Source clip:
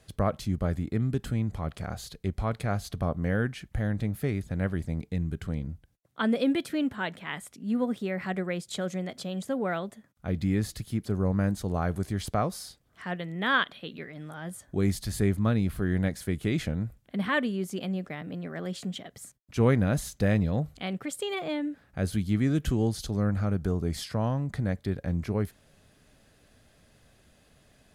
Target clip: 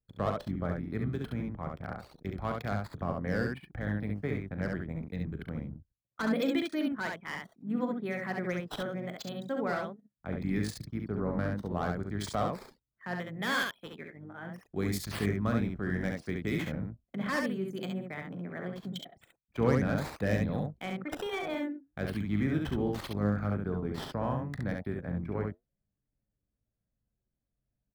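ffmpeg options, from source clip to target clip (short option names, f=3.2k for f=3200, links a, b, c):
-filter_complex "[0:a]anlmdn=1,highpass=f=170:p=1,highshelf=f=11k:g=-3,bandreject=f=2.8k:w=7.4,acrossover=split=280|940|3700[a][b][c][d];[a]tremolo=f=50:d=0.667[e];[b]flanger=delay=6.3:depth=6.7:regen=-67:speed=1.4:shape=triangular[f];[c]asoftclip=type=hard:threshold=-33.5dB[g];[d]acrusher=samples=11:mix=1:aa=0.000001:lfo=1:lforange=17.6:lforate=0.72[h];[e][f][g][h]amix=inputs=4:normalize=0,aecho=1:1:39|68:0.251|0.668"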